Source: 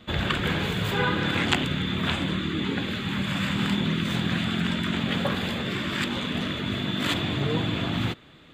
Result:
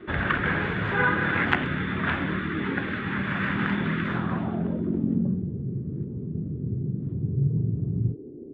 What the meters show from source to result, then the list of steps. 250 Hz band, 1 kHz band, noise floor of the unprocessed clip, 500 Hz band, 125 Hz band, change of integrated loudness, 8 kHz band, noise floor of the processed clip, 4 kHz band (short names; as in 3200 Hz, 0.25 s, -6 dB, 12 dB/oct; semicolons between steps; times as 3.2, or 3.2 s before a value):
-0.5 dB, +1.0 dB, -50 dBFS, -1.5 dB, +1.5 dB, -0.5 dB, under -25 dB, -39 dBFS, -13.5 dB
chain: low-pass sweep 1700 Hz -> 140 Hz, 4.05–5.49; band noise 230–420 Hz -40 dBFS; gain -1.5 dB